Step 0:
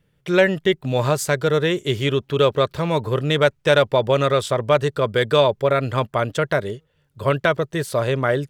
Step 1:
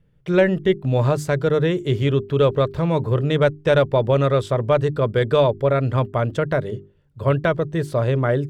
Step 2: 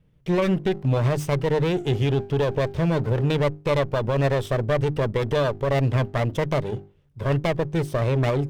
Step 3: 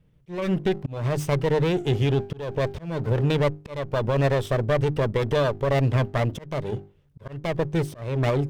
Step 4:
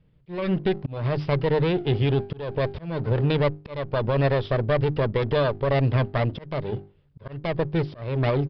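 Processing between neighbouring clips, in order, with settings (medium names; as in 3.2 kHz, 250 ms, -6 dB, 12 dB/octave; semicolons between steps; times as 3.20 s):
tilt EQ -2.5 dB/octave; hum notches 50/100/150/200/250/300/350/400 Hz; trim -2.5 dB
comb filter that takes the minimum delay 0.35 ms; peak limiter -13.5 dBFS, peak gain reduction 7.5 dB
slow attack 326 ms
resampled via 11.025 kHz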